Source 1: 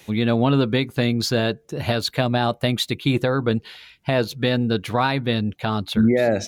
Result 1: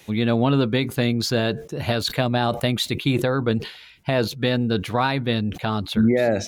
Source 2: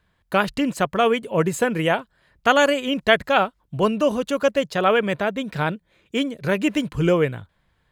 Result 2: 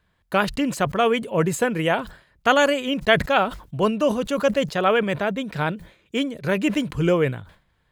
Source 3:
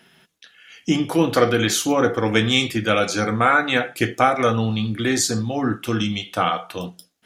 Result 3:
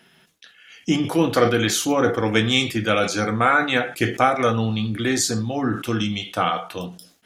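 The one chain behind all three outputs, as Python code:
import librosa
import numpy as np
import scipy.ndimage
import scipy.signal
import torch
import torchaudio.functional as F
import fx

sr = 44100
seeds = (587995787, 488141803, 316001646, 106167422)

y = fx.sustainer(x, sr, db_per_s=130.0)
y = F.gain(torch.from_numpy(y), -1.0).numpy()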